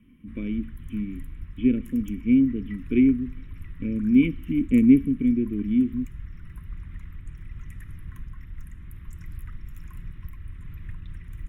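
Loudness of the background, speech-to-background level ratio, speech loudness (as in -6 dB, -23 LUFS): -42.5 LUFS, 19.5 dB, -23.0 LUFS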